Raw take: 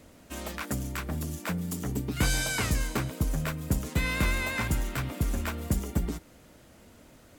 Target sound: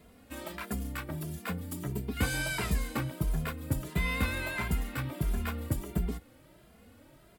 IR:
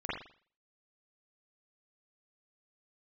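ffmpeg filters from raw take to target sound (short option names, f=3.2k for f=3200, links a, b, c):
-filter_complex "[0:a]equalizer=f=6.3k:t=o:w=0.58:g=-9,asplit=2[a][b];[b]adelay=2.5,afreqshift=1.5[c];[a][c]amix=inputs=2:normalize=1"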